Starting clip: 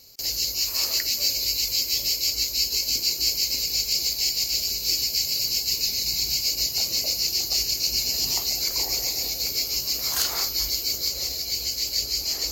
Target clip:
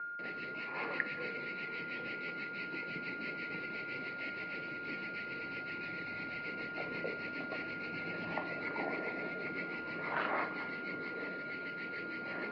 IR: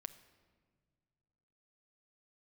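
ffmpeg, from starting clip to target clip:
-filter_complex "[0:a]aeval=exprs='val(0)+0.01*sin(2*PI*1500*n/s)':channel_layout=same,highpass=frequency=250:width_type=q:width=0.5412,highpass=frequency=250:width_type=q:width=1.307,lowpass=frequency=2300:width_type=q:width=0.5176,lowpass=frequency=2300:width_type=q:width=0.7071,lowpass=frequency=2300:width_type=q:width=1.932,afreqshift=-87[link_01];[1:a]atrim=start_sample=2205[link_02];[link_01][link_02]afir=irnorm=-1:irlink=0,volume=6dB"

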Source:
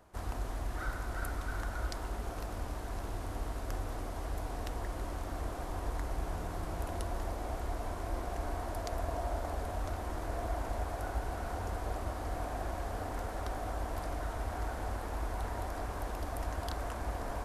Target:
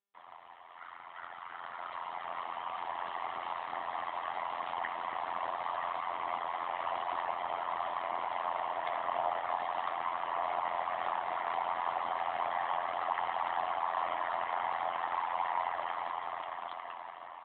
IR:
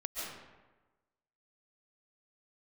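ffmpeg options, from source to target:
-filter_complex "[0:a]highpass=780,aecho=1:1:1:0.75,dynaudnorm=framelen=760:gausssize=5:maxgain=16dB,asplit=2[link_01][link_02];[link_02]aeval=exprs='0.0841*(abs(mod(val(0)/0.0841+3,4)-2)-1)':channel_layout=same,volume=-11.5dB[link_03];[link_01][link_03]amix=inputs=2:normalize=0,flanger=delay=7.7:depth=5.2:regen=-49:speed=0.6:shape=sinusoidal,acrusher=bits=8:mix=0:aa=0.000001,tremolo=f=86:d=0.947,asplit=2[link_04][link_05];[link_05]adelay=72,lowpass=frequency=2500:poles=1,volume=-12.5dB,asplit=2[link_06][link_07];[link_07]adelay=72,lowpass=frequency=2500:poles=1,volume=0.24,asplit=2[link_08][link_09];[link_09]adelay=72,lowpass=frequency=2500:poles=1,volume=0.24[link_10];[link_04][link_06][link_08][link_10]amix=inputs=4:normalize=0,asplit=2[link_11][link_12];[1:a]atrim=start_sample=2205,asetrate=26460,aresample=44100[link_13];[link_12][link_13]afir=irnorm=-1:irlink=0,volume=-19.5dB[link_14];[link_11][link_14]amix=inputs=2:normalize=0" -ar 8000 -c:a libopencore_amrnb -b:a 7400

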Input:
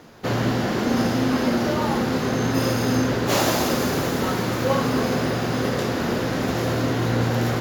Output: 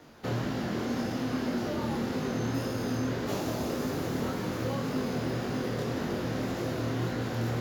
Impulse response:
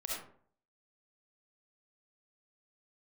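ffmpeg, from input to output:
-filter_complex "[0:a]acrossover=split=530|1400[link_01][link_02][link_03];[link_01]acompressor=threshold=-23dB:ratio=4[link_04];[link_02]acompressor=threshold=-36dB:ratio=4[link_05];[link_03]acompressor=threshold=-37dB:ratio=4[link_06];[link_04][link_05][link_06]amix=inputs=3:normalize=0,flanger=delay=19.5:depth=7.4:speed=1.8,volume=-3dB"

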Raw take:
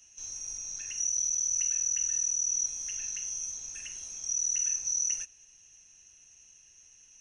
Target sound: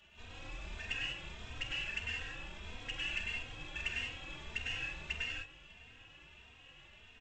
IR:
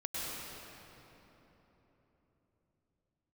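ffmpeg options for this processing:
-filter_complex "[0:a]asplit=2[link_01][link_02];[link_02]adelay=602,lowpass=frequency=1100:poles=1,volume=-17dB,asplit=2[link_03][link_04];[link_04]adelay=602,lowpass=frequency=1100:poles=1,volume=0.41,asplit=2[link_05][link_06];[link_06]adelay=602,lowpass=frequency=1100:poles=1,volume=0.41[link_07];[link_01][link_03][link_05][link_07]amix=inputs=4:normalize=0,acrusher=bits=10:mix=0:aa=0.000001,aresample=8000,aresample=44100,aresample=16000,acrusher=bits=3:mode=log:mix=0:aa=0.000001,aresample=44100[link_08];[1:a]atrim=start_sample=2205,afade=type=out:start_time=0.26:duration=0.01,atrim=end_sample=11907[link_09];[link_08][link_09]afir=irnorm=-1:irlink=0,asplit=2[link_10][link_11];[link_11]adelay=3,afreqshift=1.6[link_12];[link_10][link_12]amix=inputs=2:normalize=1,volume=13.5dB"

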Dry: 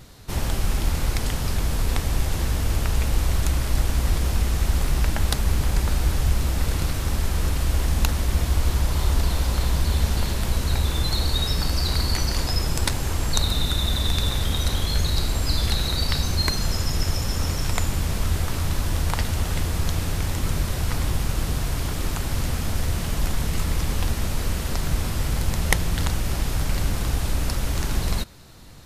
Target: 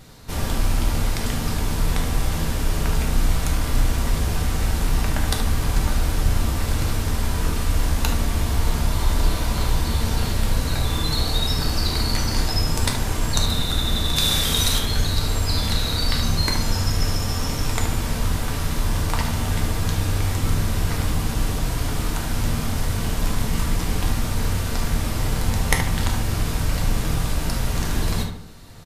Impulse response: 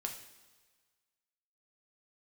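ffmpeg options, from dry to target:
-filter_complex "[0:a]asettb=1/sr,asplit=3[link_01][link_02][link_03];[link_01]atrim=end=14.164[link_04];[link_02]atrim=start=14.16:end=14.79,asetpts=PTS-STARTPTS,afade=type=in:duration=0.004:curve=qsin,afade=type=out:start_time=0.626:duration=0.004:curve=qsin,highshelf=frequency=2300:gain=9.5[link_05];[link_03]atrim=start=14.786[link_06];[link_04][link_05]acrossfade=duration=0.004:curve1=hsin:curve2=qsin[link_07];[link_07][link_06]acrossfade=duration=0.004:curve1=qsin:curve2=hsin,asplit=2[link_08][link_09];[link_09]adelay=74,lowpass=frequency=1800:poles=1,volume=-5dB,asplit=2[link_10][link_11];[link_11]adelay=74,lowpass=frequency=1800:poles=1,volume=0.51,asplit=2[link_12][link_13];[link_13]adelay=74,lowpass=frequency=1800:poles=1,volume=0.51,asplit=2[link_14][link_15];[link_15]adelay=74,lowpass=frequency=1800:poles=1,volume=0.51,asplit=2[link_16][link_17];[link_17]adelay=74,lowpass=frequency=1800:poles=1,volume=0.51,asplit=2[link_18][link_19];[link_19]adelay=74,lowpass=frequency=1800:poles=1,volume=0.51[link_20];[link_08][link_10][link_12][link_14][link_16][link_18][link_20]amix=inputs=7:normalize=0[link_21];[1:a]atrim=start_sample=2205,atrim=end_sample=3969,asetrate=48510,aresample=44100[link_22];[link_21][link_22]afir=irnorm=-1:irlink=0,volume=3dB"

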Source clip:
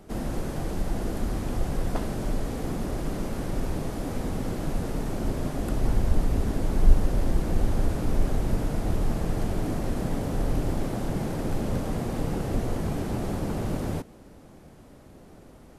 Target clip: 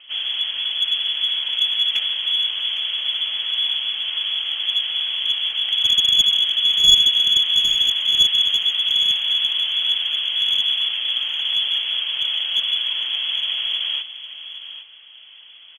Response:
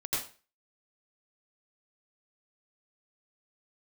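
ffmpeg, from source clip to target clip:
-filter_complex "[0:a]apsyclip=12.5dB,lowpass=frequency=2900:width_type=q:width=0.5098,lowpass=frequency=2900:width_type=q:width=0.6013,lowpass=frequency=2900:width_type=q:width=0.9,lowpass=frequency=2900:width_type=q:width=2.563,afreqshift=-3400,aeval=exprs='1.68*(cos(1*acos(clip(val(0)/1.68,-1,1)))-cos(1*PI/2))+0.422*(cos(2*acos(clip(val(0)/1.68,-1,1)))-cos(2*PI/2))+0.0266*(cos(4*acos(clip(val(0)/1.68,-1,1)))-cos(4*PI/2))+0.0422*(cos(5*acos(clip(val(0)/1.68,-1,1)))-cos(5*PI/2))+0.0266*(cos(8*acos(clip(val(0)/1.68,-1,1)))-cos(8*PI/2))':channel_layout=same,lowshelf=frequency=71:gain=-10.5,asplit=2[link_01][link_02];[link_02]aecho=0:1:808:0.251[link_03];[link_01][link_03]amix=inputs=2:normalize=0,volume=-9dB"

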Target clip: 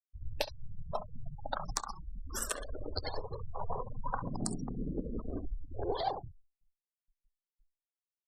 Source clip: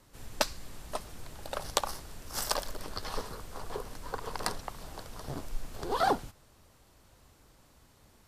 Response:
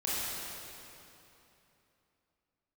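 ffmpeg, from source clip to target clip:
-filter_complex "[0:a]asettb=1/sr,asplit=3[link_01][link_02][link_03];[link_01]atrim=end=4.224[link_04];[link_02]atrim=start=4.22:end=5.19,asetpts=PTS-STARTPTS,afade=type=in:duration=0.004:curve=qsin,afade=type=out:start_time=0.966:duration=0.004:curve=qsin,equalizer=frequency=125:width_type=o:width=1:gain=11,equalizer=frequency=250:width_type=o:width=1:gain=9,equalizer=frequency=500:width_type=o:width=1:gain=10,equalizer=frequency=1000:width_type=o:width=1:gain=-11,equalizer=frequency=2000:width_type=o:width=1:gain=-11,equalizer=frequency=4000:width_type=o:width=1:gain=-4,equalizer=frequency=8000:width_type=o:width=1:gain=7[link_05];[link_03]atrim=start=5.186[link_06];[link_04][link_05]acrossfade=duration=0.004:curve1=hsin:curve2=qsin[link_07];[link_07][link_06]acrossfade=duration=0.004:curve1=qsin:curve2=hsin,aecho=1:1:27|66:0.211|0.266,afftfilt=real='re*gte(hypot(re,im),0.0178)':imag='im*gte(hypot(re,im),0.0178)':win_size=1024:overlap=0.75,acompressor=threshold=-35dB:ratio=10,tremolo=f=11:d=0.49,adynamicequalizer=threshold=0.002:dfrequency=460:dqfactor=1.2:tfrequency=460:tqfactor=1.2:attack=5:release=100:ratio=0.375:range=2:mode=cutabove:tftype=bell,asplit=2[link_08][link_09];[link_09]afreqshift=0.36[link_10];[link_08][link_10]amix=inputs=2:normalize=1,volume=10dB"

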